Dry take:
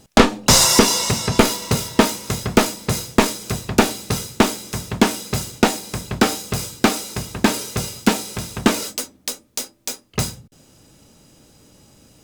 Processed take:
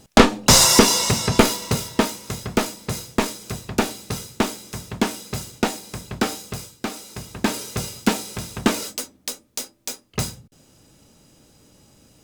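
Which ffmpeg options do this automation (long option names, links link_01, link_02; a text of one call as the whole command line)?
ffmpeg -i in.wav -af "volume=11dB,afade=type=out:start_time=1.27:duration=0.84:silence=0.501187,afade=type=out:start_time=6.44:duration=0.34:silence=0.398107,afade=type=in:start_time=6.78:duration=0.98:silence=0.281838" out.wav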